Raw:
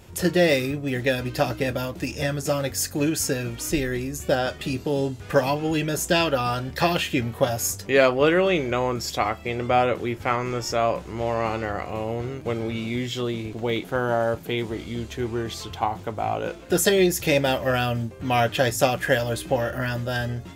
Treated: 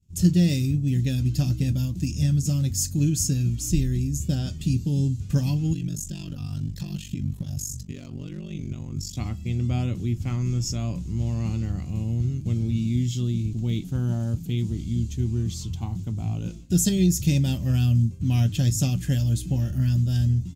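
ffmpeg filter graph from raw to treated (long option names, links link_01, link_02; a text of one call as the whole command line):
ffmpeg -i in.wav -filter_complex "[0:a]asettb=1/sr,asplit=3[link_01][link_02][link_03];[link_01]atrim=end=5.734[link_04];[link_02]atrim=start=5.73:end=9.17,asetpts=PTS-STARTPTS,afade=type=in:duration=0.004:curve=qsin,afade=type=out:start_time=3.436:duration=0.004:curve=qsin,acompressor=threshold=-27dB:ratio=4:attack=3.2:release=140:knee=1:detection=peak,asoftclip=type=hard:threshold=-22dB,aeval=exprs='val(0)*sin(2*PI*24*n/s)':channel_layout=same[link_05];[link_03]atrim=start=9.166[link_06];[link_04][link_05]acrossfade=duration=0.004:curve1=hsin:curve2=qsin[link_07];[link_07][link_06]acrossfade=duration=0.004:curve1=qsin:curve2=hsin,agate=range=-33dB:threshold=-35dB:ratio=3:detection=peak,firequalizer=gain_entry='entry(170,0);entry(470,-29);entry(1700,-30);entry(2700,-19);entry(6800,-6);entry(9800,-13)':delay=0.05:min_phase=1,volume=9dB" out.wav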